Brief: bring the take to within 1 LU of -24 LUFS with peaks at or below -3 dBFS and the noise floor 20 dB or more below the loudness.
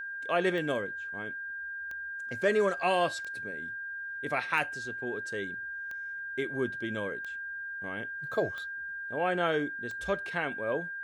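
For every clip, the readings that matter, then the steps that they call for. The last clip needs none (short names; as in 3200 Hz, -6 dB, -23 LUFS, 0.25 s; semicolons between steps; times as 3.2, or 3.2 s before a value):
clicks 8; steady tone 1600 Hz; tone level -36 dBFS; loudness -32.5 LUFS; peak -13.0 dBFS; loudness target -24.0 LUFS
-> de-click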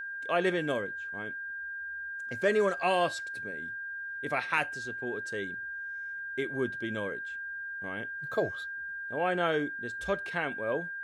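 clicks 0; steady tone 1600 Hz; tone level -36 dBFS
-> notch 1600 Hz, Q 30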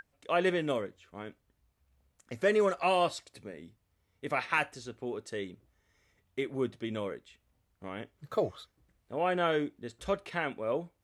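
steady tone none; loudness -32.5 LUFS; peak -13.5 dBFS; loudness target -24.0 LUFS
-> gain +8.5 dB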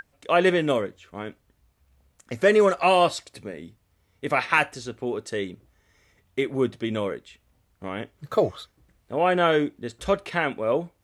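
loudness -24.0 LUFS; peak -5.0 dBFS; noise floor -68 dBFS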